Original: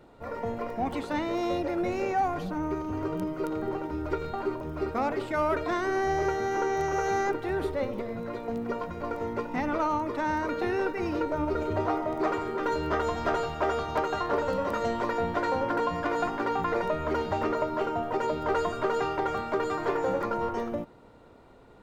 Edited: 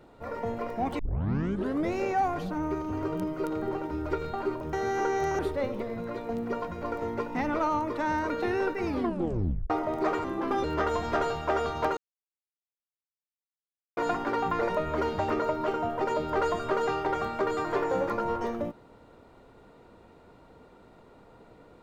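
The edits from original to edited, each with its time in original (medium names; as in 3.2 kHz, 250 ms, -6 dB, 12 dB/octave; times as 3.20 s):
0.99 s: tape start 0.93 s
4.73–6.30 s: delete
6.96–7.58 s: delete
11.04 s: tape stop 0.85 s
12.43–12.77 s: speed 85%
14.10–16.10 s: mute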